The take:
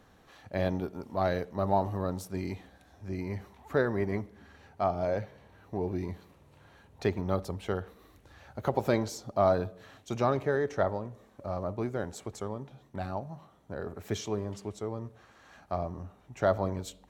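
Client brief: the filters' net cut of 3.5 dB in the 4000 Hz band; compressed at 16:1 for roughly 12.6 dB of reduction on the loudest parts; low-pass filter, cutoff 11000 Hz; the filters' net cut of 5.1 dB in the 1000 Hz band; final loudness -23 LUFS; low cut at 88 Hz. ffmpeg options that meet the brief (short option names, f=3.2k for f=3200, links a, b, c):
-af "highpass=88,lowpass=11k,equalizer=f=1k:t=o:g=-7.5,equalizer=f=4k:t=o:g=-4,acompressor=threshold=-35dB:ratio=16,volume=20dB"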